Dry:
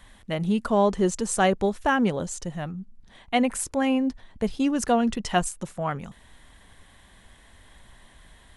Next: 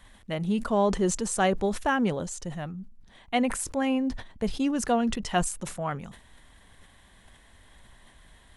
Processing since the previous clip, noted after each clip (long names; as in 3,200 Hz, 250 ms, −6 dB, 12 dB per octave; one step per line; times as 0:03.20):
level that may fall only so fast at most 97 dB per second
level −3 dB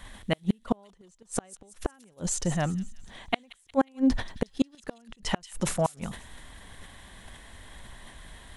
gate with flip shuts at −19 dBFS, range −39 dB
delay with a high-pass on its return 180 ms, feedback 44%, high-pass 3,500 Hz, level −11.5 dB
level +7.5 dB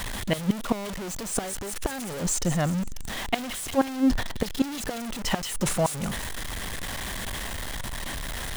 converter with a step at zero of −28 dBFS